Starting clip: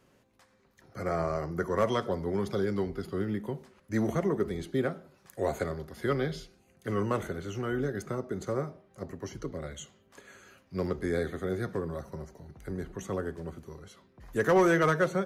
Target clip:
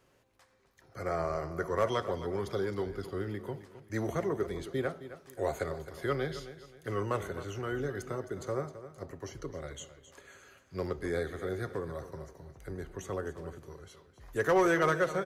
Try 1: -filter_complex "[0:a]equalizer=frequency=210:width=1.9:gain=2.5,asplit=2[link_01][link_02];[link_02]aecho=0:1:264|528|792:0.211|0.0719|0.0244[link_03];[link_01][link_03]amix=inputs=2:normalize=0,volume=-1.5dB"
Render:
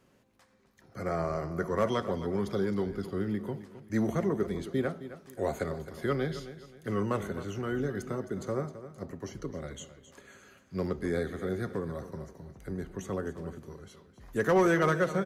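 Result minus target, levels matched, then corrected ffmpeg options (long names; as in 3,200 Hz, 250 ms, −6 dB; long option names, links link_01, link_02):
250 Hz band +3.5 dB
-filter_complex "[0:a]equalizer=frequency=210:width=1.9:gain=-9,asplit=2[link_01][link_02];[link_02]aecho=0:1:264|528|792:0.211|0.0719|0.0244[link_03];[link_01][link_03]amix=inputs=2:normalize=0,volume=-1.5dB"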